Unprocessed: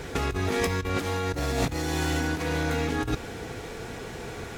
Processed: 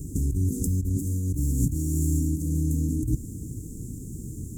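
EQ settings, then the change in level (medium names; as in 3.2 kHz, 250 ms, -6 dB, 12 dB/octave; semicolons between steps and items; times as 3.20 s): Chebyshev band-stop 300–7200 Hz, order 4; dynamic bell 270 Hz, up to -4 dB, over -47 dBFS, Q 1.6; +6.5 dB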